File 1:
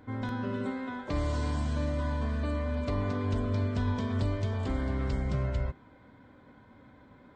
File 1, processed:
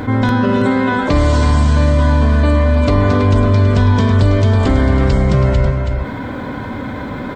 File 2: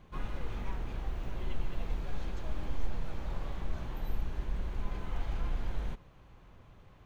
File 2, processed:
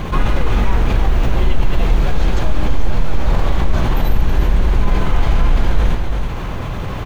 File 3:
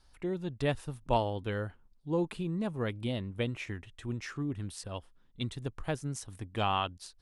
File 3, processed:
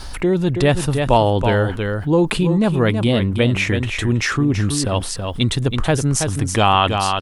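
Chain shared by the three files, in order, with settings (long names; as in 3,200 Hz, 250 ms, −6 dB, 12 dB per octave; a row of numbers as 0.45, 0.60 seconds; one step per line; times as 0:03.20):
on a send: single-tap delay 326 ms −10.5 dB
on the sum: envelope flattener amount 50%
normalise the peak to −1.5 dBFS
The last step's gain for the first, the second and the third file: +16.0, +16.0, +13.0 decibels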